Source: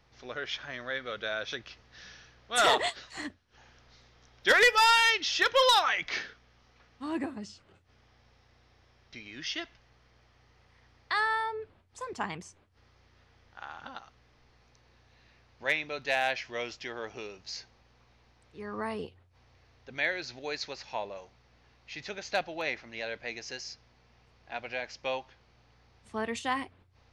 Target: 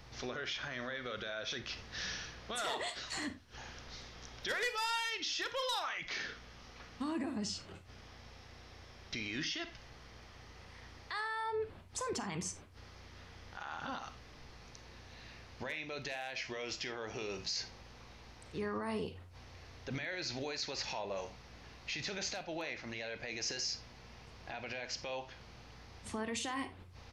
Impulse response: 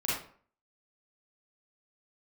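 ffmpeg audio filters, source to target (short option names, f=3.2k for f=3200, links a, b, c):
-filter_complex "[0:a]acompressor=threshold=-41dB:ratio=5,alimiter=level_in=15.5dB:limit=-24dB:level=0:latency=1:release=26,volume=-15.5dB,asplit=2[a][b];[1:a]atrim=start_sample=2205,atrim=end_sample=4410[c];[b][c]afir=irnorm=-1:irlink=0,volume=-15dB[d];[a][d]amix=inputs=2:normalize=0,aresample=32000,aresample=44100,bass=f=250:g=3,treble=f=4k:g=4,volume=7dB"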